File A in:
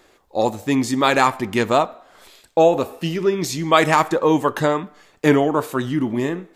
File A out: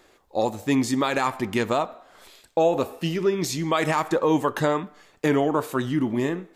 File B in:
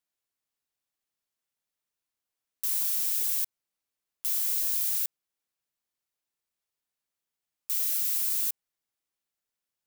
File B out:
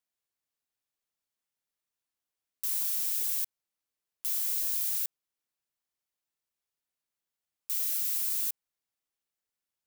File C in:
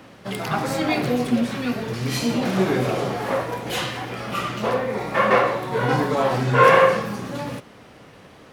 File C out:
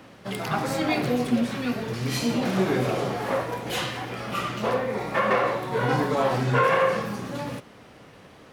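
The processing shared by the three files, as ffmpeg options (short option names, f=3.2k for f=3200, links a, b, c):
-af "alimiter=limit=-9dB:level=0:latency=1:release=124,volume=-2.5dB"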